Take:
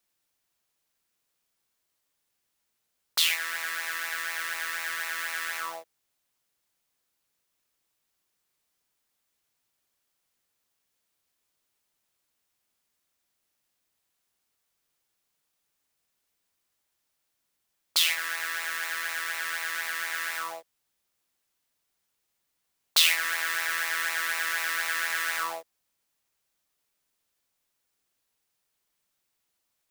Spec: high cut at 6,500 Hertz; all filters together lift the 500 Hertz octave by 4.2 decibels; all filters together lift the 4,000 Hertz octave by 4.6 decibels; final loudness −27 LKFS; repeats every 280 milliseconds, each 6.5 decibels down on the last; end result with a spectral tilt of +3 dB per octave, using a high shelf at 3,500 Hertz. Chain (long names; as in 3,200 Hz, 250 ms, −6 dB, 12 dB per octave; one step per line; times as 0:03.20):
low-pass filter 6,500 Hz
parametric band 500 Hz +5.5 dB
high-shelf EQ 3,500 Hz −3 dB
parametric band 4,000 Hz +8 dB
repeating echo 280 ms, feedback 47%, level −6.5 dB
level −2 dB